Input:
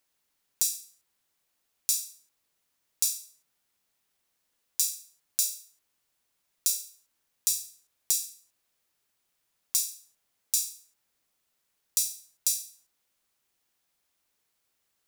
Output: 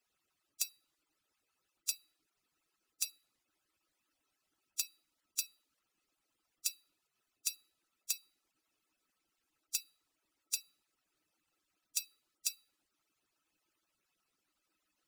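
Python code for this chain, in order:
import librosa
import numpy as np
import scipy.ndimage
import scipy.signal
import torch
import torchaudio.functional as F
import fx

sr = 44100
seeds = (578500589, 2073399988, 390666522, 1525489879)

p1 = fx.hpss_only(x, sr, part='percussive')
p2 = 10.0 ** (-14.5 / 20.0) * (np.abs((p1 / 10.0 ** (-14.5 / 20.0) + 3.0) % 4.0 - 2.0) - 1.0)
p3 = p1 + (p2 * librosa.db_to_amplitude(-7.0))
p4 = fx.high_shelf(p3, sr, hz=11000.0, db=-10.5)
p5 = fx.small_body(p4, sr, hz=(310.0, 1300.0, 2600.0), ring_ms=45, db=11)
y = p5 * librosa.db_to_amplitude(-3.0)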